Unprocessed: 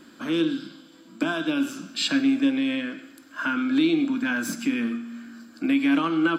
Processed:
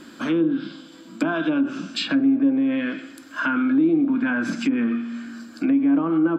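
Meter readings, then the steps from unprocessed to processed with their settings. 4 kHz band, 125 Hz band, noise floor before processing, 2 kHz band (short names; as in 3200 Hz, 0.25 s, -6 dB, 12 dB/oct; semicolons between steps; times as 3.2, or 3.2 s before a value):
-3.0 dB, +4.0 dB, -51 dBFS, +0.5 dB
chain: treble ducked by the level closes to 770 Hz, closed at -19 dBFS; in parallel at +0.5 dB: limiter -24 dBFS, peak gain reduction 11.5 dB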